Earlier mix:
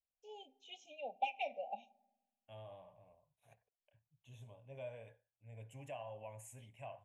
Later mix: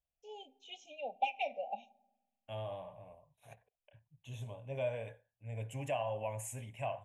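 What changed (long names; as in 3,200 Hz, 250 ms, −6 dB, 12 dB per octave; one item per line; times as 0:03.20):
first voice +3.5 dB
second voice +11.0 dB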